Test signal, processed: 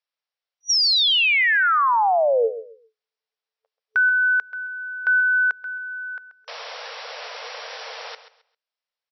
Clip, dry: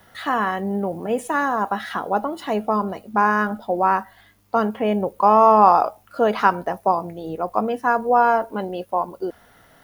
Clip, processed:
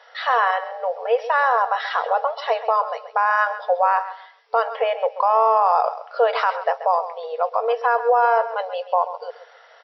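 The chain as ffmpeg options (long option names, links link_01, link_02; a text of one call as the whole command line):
ffmpeg -i in.wav -af "alimiter=limit=-12.5dB:level=0:latency=1:release=59,afftfilt=real='re*between(b*sr/4096,440,5800)':imag='im*between(b*sr/4096,440,5800)':win_size=4096:overlap=0.75,aecho=1:1:133|266|399:0.224|0.0537|0.0129,volume=4.5dB" out.wav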